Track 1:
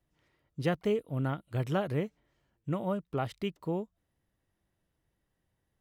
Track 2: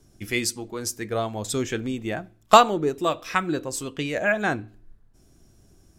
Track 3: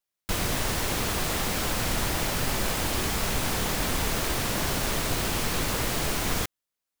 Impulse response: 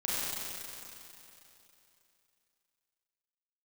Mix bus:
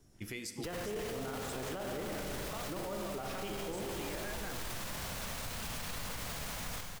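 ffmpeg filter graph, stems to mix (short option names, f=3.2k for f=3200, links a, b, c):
-filter_complex "[0:a]highpass=270,volume=-1.5dB,asplit=2[a][b];[b]volume=-4.5dB[c];[1:a]acompressor=threshold=-31dB:ratio=6,volume=-8dB,asplit=2[d][e];[e]volume=-16dB[f];[2:a]equalizer=f=350:w=2.8:g=-12,adelay=350,volume=-12.5dB,asplit=2[g][h];[h]volume=-11.5dB[i];[3:a]atrim=start_sample=2205[j];[c][f][i]amix=inputs=3:normalize=0[k];[k][j]afir=irnorm=-1:irlink=0[l];[a][d][g][l]amix=inputs=4:normalize=0,alimiter=level_in=7dB:limit=-24dB:level=0:latency=1:release=23,volume=-7dB"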